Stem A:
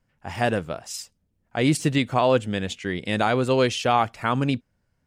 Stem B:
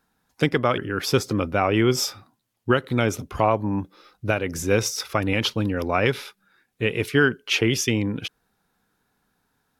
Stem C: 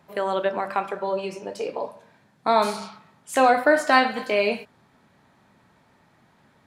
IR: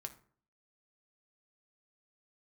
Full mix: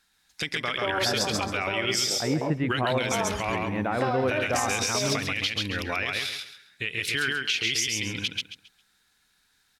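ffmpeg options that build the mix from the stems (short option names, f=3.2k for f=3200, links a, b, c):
-filter_complex "[0:a]lowpass=f=2.2k:w=0.5412,lowpass=f=2.2k:w=1.3066,adelay=650,volume=-5.5dB,asplit=2[a][b];[b]volume=-8.5dB[c];[1:a]equalizer=f=125:t=o:w=1:g=-7,equalizer=f=250:t=o:w=1:g=-6,equalizer=f=500:t=o:w=1:g=-7,equalizer=f=1k:t=o:w=1:g=-5,equalizer=f=2k:t=o:w=1:g=7,equalizer=f=4k:t=o:w=1:g=10,equalizer=f=8k:t=o:w=1:g=8,acompressor=threshold=-20dB:ratio=5,volume=-1.5dB,asplit=2[d][e];[e]volume=-4dB[f];[2:a]afwtdn=0.0398,acompressor=threshold=-22dB:ratio=6,adelay=650,volume=-2dB[g];[c][f]amix=inputs=2:normalize=0,aecho=0:1:135|270|405|540:1|0.25|0.0625|0.0156[h];[a][d][g][h]amix=inputs=4:normalize=0,alimiter=limit=-15.5dB:level=0:latency=1:release=66"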